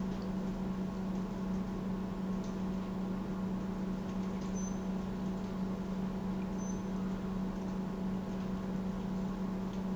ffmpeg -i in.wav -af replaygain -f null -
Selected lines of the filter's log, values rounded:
track_gain = +21.6 dB
track_peak = 0.036